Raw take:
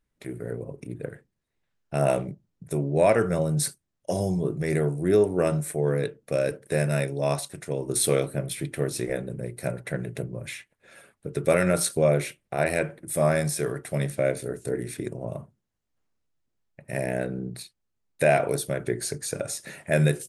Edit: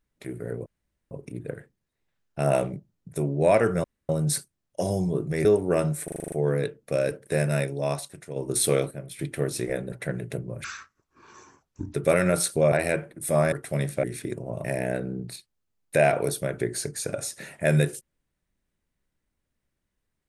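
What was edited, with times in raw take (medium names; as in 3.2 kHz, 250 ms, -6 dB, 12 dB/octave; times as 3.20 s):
0.66 s: insert room tone 0.45 s
3.39 s: insert room tone 0.25 s
4.75–5.13 s: delete
5.72 s: stutter 0.04 s, 8 plays
7.00–7.76 s: fade out, to -7.5 dB
8.31–8.59 s: gain -8.5 dB
9.32–9.77 s: delete
10.49–11.35 s: speed 66%
12.13–12.59 s: delete
13.39–13.73 s: delete
14.24–14.78 s: delete
15.39–16.91 s: delete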